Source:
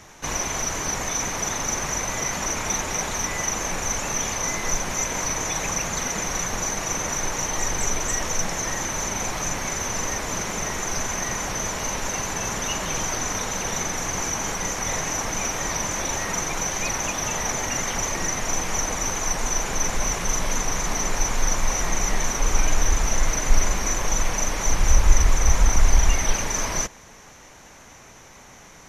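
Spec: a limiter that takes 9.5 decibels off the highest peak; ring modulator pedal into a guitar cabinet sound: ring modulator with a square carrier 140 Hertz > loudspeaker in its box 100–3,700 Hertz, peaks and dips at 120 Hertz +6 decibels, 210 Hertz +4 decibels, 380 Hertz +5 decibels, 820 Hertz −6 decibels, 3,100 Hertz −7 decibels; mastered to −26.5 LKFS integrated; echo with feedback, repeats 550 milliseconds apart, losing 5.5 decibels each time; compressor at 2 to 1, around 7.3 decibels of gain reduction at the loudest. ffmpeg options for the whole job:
ffmpeg -i in.wav -af "acompressor=threshold=-22dB:ratio=2,alimiter=limit=-20dB:level=0:latency=1,aecho=1:1:550|1100|1650|2200|2750|3300|3850:0.531|0.281|0.149|0.079|0.0419|0.0222|0.0118,aeval=exprs='val(0)*sgn(sin(2*PI*140*n/s))':channel_layout=same,highpass=100,equalizer=frequency=120:width_type=q:width=4:gain=6,equalizer=frequency=210:width_type=q:width=4:gain=4,equalizer=frequency=380:width_type=q:width=4:gain=5,equalizer=frequency=820:width_type=q:width=4:gain=-6,equalizer=frequency=3100:width_type=q:width=4:gain=-7,lowpass=frequency=3700:width=0.5412,lowpass=frequency=3700:width=1.3066,volume=1.5dB" out.wav

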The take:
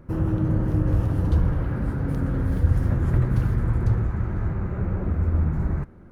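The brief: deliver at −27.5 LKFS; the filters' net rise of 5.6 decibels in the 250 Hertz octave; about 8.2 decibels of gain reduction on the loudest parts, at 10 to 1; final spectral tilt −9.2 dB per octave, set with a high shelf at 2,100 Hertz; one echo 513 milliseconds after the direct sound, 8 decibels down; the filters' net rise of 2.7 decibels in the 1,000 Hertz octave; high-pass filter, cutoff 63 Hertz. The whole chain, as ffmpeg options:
ffmpeg -i in.wav -af "highpass=63,equalizer=frequency=250:width_type=o:gain=8,equalizer=frequency=1000:width_type=o:gain=5,highshelf=frequency=2100:gain=-8.5,acompressor=threshold=-23dB:ratio=10,aecho=1:1:513:0.398,volume=0.5dB" out.wav

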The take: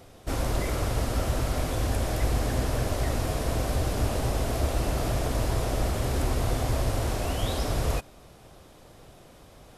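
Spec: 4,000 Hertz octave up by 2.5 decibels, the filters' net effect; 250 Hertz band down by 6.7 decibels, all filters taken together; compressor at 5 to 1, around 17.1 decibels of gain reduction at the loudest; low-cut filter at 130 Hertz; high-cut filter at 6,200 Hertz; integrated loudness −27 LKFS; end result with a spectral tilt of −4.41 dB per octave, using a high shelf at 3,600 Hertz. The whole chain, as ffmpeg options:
ffmpeg -i in.wav -af "highpass=130,lowpass=6200,equalizer=frequency=250:width_type=o:gain=-8.5,highshelf=frequency=3600:gain=-4.5,equalizer=frequency=4000:width_type=o:gain=7,acompressor=threshold=-49dB:ratio=5,volume=23dB" out.wav

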